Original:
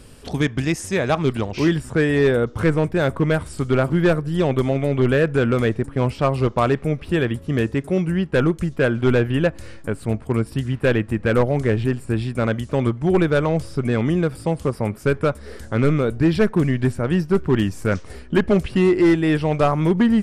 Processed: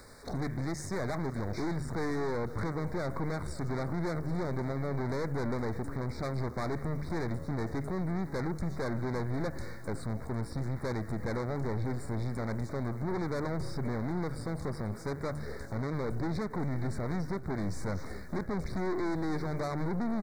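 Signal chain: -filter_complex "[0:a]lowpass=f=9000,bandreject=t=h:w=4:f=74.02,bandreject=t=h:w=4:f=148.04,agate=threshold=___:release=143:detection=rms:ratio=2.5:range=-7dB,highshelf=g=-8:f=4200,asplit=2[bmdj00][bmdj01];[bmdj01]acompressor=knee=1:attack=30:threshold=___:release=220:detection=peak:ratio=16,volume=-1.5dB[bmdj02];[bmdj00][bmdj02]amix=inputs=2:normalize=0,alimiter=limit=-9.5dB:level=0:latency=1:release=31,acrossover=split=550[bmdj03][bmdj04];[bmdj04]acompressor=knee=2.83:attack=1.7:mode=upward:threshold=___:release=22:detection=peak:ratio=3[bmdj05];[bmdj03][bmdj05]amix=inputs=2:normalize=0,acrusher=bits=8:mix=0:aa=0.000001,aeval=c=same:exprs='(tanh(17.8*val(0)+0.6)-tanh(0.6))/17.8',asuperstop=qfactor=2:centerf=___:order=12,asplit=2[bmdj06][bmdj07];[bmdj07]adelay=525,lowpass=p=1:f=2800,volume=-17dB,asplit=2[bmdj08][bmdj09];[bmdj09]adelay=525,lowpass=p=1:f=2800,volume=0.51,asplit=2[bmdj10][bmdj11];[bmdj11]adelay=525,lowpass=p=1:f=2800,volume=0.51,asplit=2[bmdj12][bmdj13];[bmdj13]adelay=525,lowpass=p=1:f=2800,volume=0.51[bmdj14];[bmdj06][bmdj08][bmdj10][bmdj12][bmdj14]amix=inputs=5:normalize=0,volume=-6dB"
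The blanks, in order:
-31dB, -25dB, -37dB, 2900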